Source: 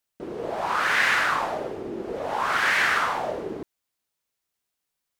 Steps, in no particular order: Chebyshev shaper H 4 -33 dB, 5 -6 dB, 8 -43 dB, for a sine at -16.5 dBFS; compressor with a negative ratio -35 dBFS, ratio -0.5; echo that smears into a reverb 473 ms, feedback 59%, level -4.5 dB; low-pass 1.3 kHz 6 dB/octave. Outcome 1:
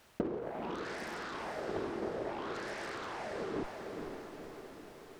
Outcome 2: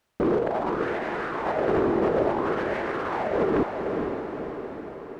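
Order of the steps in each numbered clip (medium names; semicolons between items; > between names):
low-pass > Chebyshev shaper > compressor with a negative ratio > echo that smears into a reverb; low-pass > compressor with a negative ratio > Chebyshev shaper > echo that smears into a reverb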